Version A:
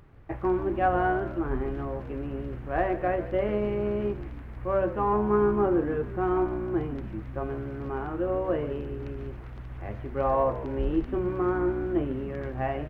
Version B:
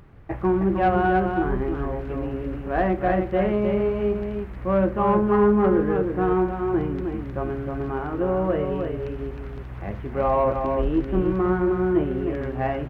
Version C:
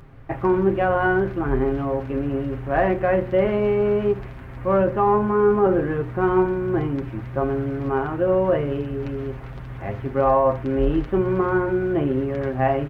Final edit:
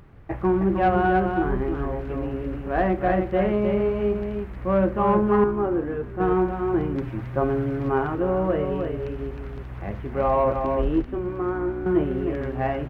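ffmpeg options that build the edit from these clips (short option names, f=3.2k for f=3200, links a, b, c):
-filter_complex "[0:a]asplit=2[a][b];[1:a]asplit=4[c][d][e][f];[c]atrim=end=5.442[g];[a]atrim=start=5.438:end=6.202[h];[d]atrim=start=6.198:end=6.962[i];[2:a]atrim=start=6.958:end=8.152[j];[e]atrim=start=8.148:end=11.022[k];[b]atrim=start=11.018:end=11.862[l];[f]atrim=start=11.858[m];[g][h]acrossfade=d=0.004:c1=hsin:c2=hsin[n];[n][i]acrossfade=d=0.004:c1=hsin:c2=hsin[o];[o][j]acrossfade=d=0.004:c1=hsin:c2=hsin[p];[p][k]acrossfade=d=0.004:c1=hsin:c2=hsin[q];[q][l]acrossfade=d=0.004:c1=hsin:c2=hsin[r];[r][m]acrossfade=d=0.004:c1=hsin:c2=hsin"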